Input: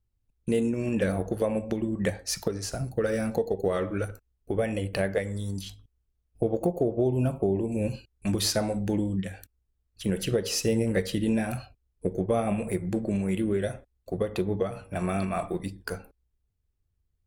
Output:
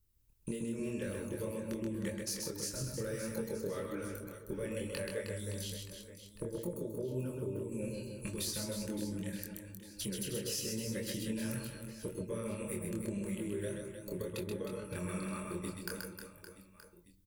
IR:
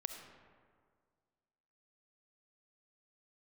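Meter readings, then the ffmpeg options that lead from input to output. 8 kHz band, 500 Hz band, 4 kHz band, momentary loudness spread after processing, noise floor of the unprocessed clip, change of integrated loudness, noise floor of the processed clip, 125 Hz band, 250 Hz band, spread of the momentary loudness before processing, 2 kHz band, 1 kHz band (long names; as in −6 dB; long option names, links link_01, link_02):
−4.5 dB, −12.0 dB, −7.5 dB, 8 LU, −76 dBFS, −10.5 dB, −61 dBFS, −10.5 dB, −10.5 dB, 9 LU, −9.5 dB, −15.0 dB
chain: -af "aemphasis=mode=production:type=50kf,acompressor=threshold=-40dB:ratio=5,flanger=delay=22.5:depth=5.2:speed=1.8,asuperstop=centerf=730:order=20:qfactor=3.7,aecho=1:1:130|312|566.8|923.5|1423:0.631|0.398|0.251|0.158|0.1,volume=4dB"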